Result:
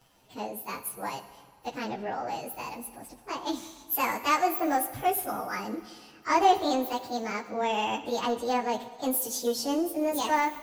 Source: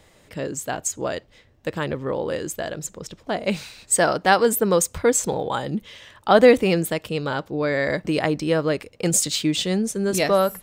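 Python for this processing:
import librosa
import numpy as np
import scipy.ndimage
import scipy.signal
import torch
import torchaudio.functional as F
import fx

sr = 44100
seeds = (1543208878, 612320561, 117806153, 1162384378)

p1 = fx.pitch_bins(x, sr, semitones=7.5)
p2 = np.clip(p1, -10.0 ** (-19.0 / 20.0), 10.0 ** (-19.0 / 20.0))
p3 = p1 + (p2 * librosa.db_to_amplitude(-5.5))
p4 = fx.rev_plate(p3, sr, seeds[0], rt60_s=1.9, hf_ratio=0.85, predelay_ms=0, drr_db=11.5)
y = p4 * librosa.db_to_amplitude(-8.0)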